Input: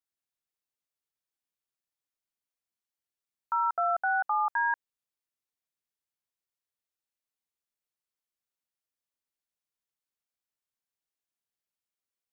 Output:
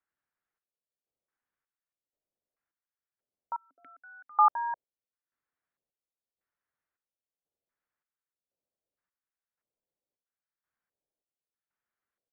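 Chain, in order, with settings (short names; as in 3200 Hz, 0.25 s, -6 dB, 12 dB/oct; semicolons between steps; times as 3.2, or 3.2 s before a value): LFO low-pass square 0.78 Hz 560–1600 Hz; 3.56–4.39 vowel filter i; chopper 0.94 Hz, depth 65%, duty 55%; gain +3.5 dB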